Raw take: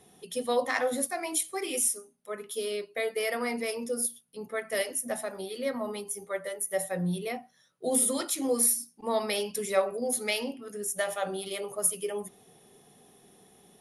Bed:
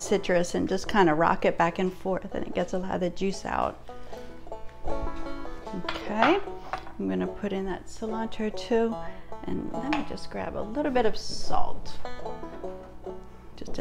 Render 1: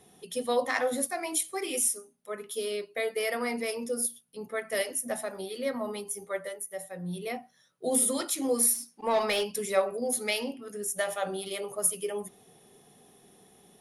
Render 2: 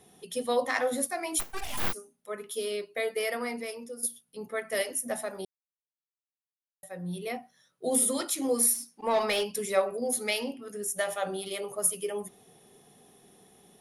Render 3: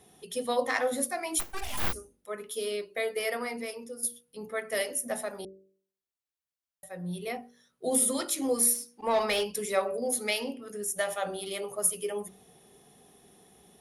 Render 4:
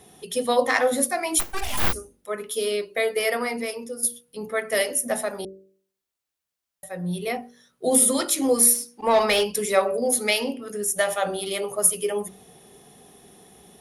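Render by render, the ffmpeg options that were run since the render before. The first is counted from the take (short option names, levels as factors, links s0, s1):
-filter_complex "[0:a]asplit=3[s0][s1][s2];[s0]afade=t=out:st=8.73:d=0.02[s3];[s1]asplit=2[s4][s5];[s5]highpass=f=720:p=1,volume=5.01,asoftclip=type=tanh:threshold=0.133[s6];[s4][s6]amix=inputs=2:normalize=0,lowpass=f=3200:p=1,volume=0.501,afade=t=in:st=8.73:d=0.02,afade=t=out:st=9.43:d=0.02[s7];[s2]afade=t=in:st=9.43:d=0.02[s8];[s3][s7][s8]amix=inputs=3:normalize=0,asplit=3[s9][s10][s11];[s9]atrim=end=6.71,asetpts=PTS-STARTPTS,afade=t=out:st=6.4:d=0.31:silence=0.375837[s12];[s10]atrim=start=6.71:end=7.02,asetpts=PTS-STARTPTS,volume=0.376[s13];[s11]atrim=start=7.02,asetpts=PTS-STARTPTS,afade=t=in:d=0.31:silence=0.375837[s14];[s12][s13][s14]concat=n=3:v=0:a=1"
-filter_complex "[0:a]asplit=3[s0][s1][s2];[s0]afade=t=out:st=1.39:d=0.02[s3];[s1]aeval=exprs='abs(val(0))':c=same,afade=t=in:st=1.39:d=0.02,afade=t=out:st=1.92:d=0.02[s4];[s2]afade=t=in:st=1.92:d=0.02[s5];[s3][s4][s5]amix=inputs=3:normalize=0,asplit=4[s6][s7][s8][s9];[s6]atrim=end=4.03,asetpts=PTS-STARTPTS,afade=t=out:st=3.19:d=0.84:silence=0.251189[s10];[s7]atrim=start=4.03:end=5.45,asetpts=PTS-STARTPTS,afade=t=in:d=0.004:c=hsin:silence=0.251189,afade=t=out:st=1.416:d=0.004:c=hsin[s11];[s8]atrim=start=5.45:end=6.83,asetpts=PTS-STARTPTS,volume=0[s12];[s9]atrim=start=6.83,asetpts=PTS-STARTPTS,afade=t=in:d=0.004:c=hsin[s13];[s10][s11][s12][s13]concat=n=4:v=0:a=1"
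-af "equalizer=f=66:t=o:w=0.3:g=13,bandreject=f=48.05:t=h:w=4,bandreject=f=96.1:t=h:w=4,bandreject=f=144.15:t=h:w=4,bandreject=f=192.2:t=h:w=4,bandreject=f=240.25:t=h:w=4,bandreject=f=288.3:t=h:w=4,bandreject=f=336.35:t=h:w=4,bandreject=f=384.4:t=h:w=4,bandreject=f=432.45:t=h:w=4,bandreject=f=480.5:t=h:w=4,bandreject=f=528.55:t=h:w=4,bandreject=f=576.6:t=h:w=4"
-af "volume=2.37"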